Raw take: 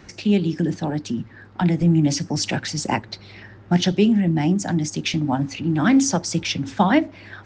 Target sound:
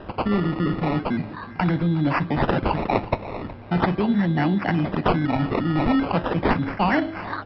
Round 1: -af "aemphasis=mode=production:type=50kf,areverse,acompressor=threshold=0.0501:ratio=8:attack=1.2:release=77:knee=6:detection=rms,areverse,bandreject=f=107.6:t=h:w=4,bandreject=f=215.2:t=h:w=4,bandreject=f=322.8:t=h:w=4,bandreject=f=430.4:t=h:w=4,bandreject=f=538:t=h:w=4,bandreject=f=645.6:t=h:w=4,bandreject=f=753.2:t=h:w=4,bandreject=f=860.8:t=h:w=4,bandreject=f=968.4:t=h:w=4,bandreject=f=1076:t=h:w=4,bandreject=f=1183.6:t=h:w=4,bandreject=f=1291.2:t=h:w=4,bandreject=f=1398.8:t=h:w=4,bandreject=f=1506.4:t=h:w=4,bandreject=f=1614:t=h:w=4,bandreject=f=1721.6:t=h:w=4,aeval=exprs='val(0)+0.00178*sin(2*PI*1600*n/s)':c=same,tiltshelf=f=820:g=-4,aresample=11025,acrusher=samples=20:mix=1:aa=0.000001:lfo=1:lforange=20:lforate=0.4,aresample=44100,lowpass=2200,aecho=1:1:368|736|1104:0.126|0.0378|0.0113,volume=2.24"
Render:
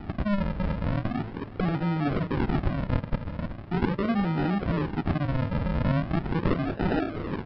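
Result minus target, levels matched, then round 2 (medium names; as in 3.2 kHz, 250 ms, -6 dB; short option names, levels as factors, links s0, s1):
decimation with a swept rate: distortion +11 dB; compression: peak gain reduction +5.5 dB
-af "aemphasis=mode=production:type=50kf,areverse,acompressor=threshold=0.1:ratio=8:attack=1.2:release=77:knee=6:detection=rms,areverse,bandreject=f=107.6:t=h:w=4,bandreject=f=215.2:t=h:w=4,bandreject=f=322.8:t=h:w=4,bandreject=f=430.4:t=h:w=4,bandreject=f=538:t=h:w=4,bandreject=f=645.6:t=h:w=4,bandreject=f=753.2:t=h:w=4,bandreject=f=860.8:t=h:w=4,bandreject=f=968.4:t=h:w=4,bandreject=f=1076:t=h:w=4,bandreject=f=1183.6:t=h:w=4,bandreject=f=1291.2:t=h:w=4,bandreject=f=1398.8:t=h:w=4,bandreject=f=1506.4:t=h:w=4,bandreject=f=1614:t=h:w=4,bandreject=f=1721.6:t=h:w=4,aeval=exprs='val(0)+0.00178*sin(2*PI*1600*n/s)':c=same,tiltshelf=f=820:g=-4,aresample=11025,acrusher=samples=5:mix=1:aa=0.000001:lfo=1:lforange=5:lforate=0.4,aresample=44100,lowpass=2200,aecho=1:1:368|736|1104:0.126|0.0378|0.0113,volume=2.24"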